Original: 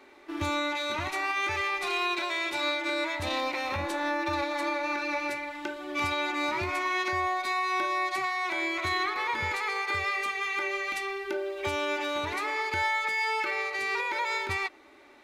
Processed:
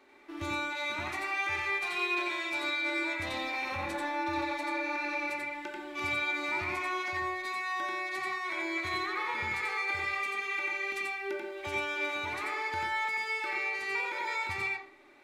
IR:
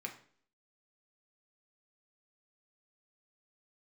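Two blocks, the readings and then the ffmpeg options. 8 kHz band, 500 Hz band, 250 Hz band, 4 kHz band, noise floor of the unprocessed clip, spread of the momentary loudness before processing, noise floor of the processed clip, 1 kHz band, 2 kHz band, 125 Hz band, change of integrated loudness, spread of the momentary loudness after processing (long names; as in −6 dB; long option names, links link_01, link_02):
−5.5 dB, −6.0 dB, −4.0 dB, −5.5 dB, −54 dBFS, 4 LU, −43 dBFS, −5.0 dB, −2.0 dB, −6.0 dB, −3.0 dB, 4 LU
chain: -filter_complex "[0:a]asplit=2[link_01][link_02];[1:a]atrim=start_sample=2205,adelay=88[link_03];[link_02][link_03]afir=irnorm=-1:irlink=0,volume=1.5dB[link_04];[link_01][link_04]amix=inputs=2:normalize=0,volume=-7dB"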